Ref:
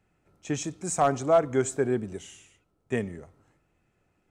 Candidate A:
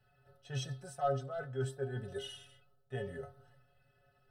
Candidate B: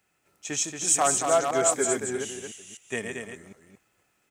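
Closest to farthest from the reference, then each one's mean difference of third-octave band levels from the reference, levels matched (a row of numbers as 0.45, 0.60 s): A, B; 7.0, 10.0 dB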